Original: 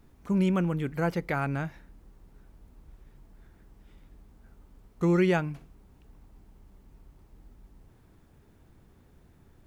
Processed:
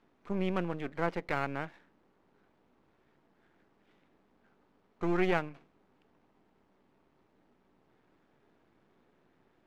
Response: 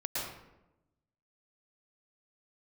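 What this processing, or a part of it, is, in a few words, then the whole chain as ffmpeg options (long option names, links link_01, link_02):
crystal radio: -af "highpass=270,lowpass=3300,aeval=exprs='if(lt(val(0),0),0.251*val(0),val(0))':channel_layout=same"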